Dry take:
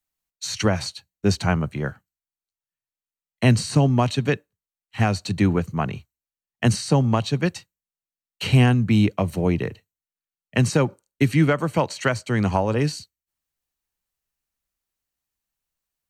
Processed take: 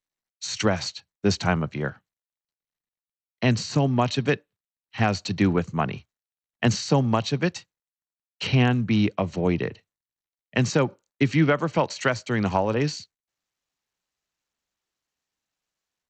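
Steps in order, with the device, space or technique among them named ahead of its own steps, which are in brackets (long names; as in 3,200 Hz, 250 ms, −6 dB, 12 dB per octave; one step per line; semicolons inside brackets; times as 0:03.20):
Bluetooth headset (high-pass filter 150 Hz 6 dB per octave; automatic gain control gain up to 6 dB; downsampling to 16,000 Hz; level −4.5 dB; SBC 64 kbit/s 32,000 Hz)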